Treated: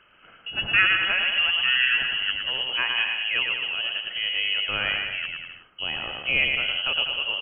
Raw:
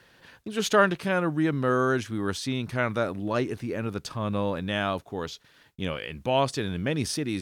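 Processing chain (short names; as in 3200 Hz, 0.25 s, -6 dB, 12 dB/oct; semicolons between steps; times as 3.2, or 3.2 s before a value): inverted band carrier 3100 Hz; bouncing-ball echo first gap 0.11 s, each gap 0.8×, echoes 5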